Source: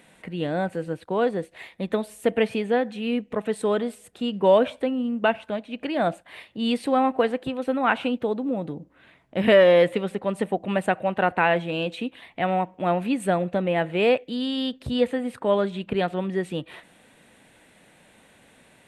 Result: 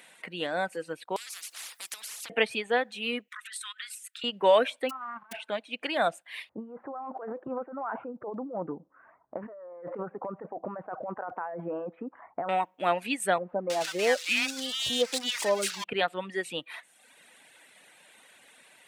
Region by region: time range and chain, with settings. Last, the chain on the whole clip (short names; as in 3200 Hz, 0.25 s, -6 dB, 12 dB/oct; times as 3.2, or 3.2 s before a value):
1.16–2.3 HPF 1100 Hz + compressor 12:1, threshold -35 dBFS + spectral compressor 10:1
3.28–4.24 steep high-pass 1300 Hz 48 dB/oct + negative-ratio compressor -43 dBFS, ratio -0.5
4.89–5.31 spectral whitening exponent 0.1 + negative-ratio compressor -27 dBFS, ratio -0.5 + ladder low-pass 1300 Hz, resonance 70%
6.49–12.49 steep low-pass 1300 Hz + negative-ratio compressor -30 dBFS
13.38–15.84 switching spikes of -16 dBFS + air absorption 89 m + bands offset in time lows, highs 0.32 s, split 1100 Hz
whole clip: reverb removal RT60 0.88 s; HPF 1400 Hz 6 dB/oct; gain +5 dB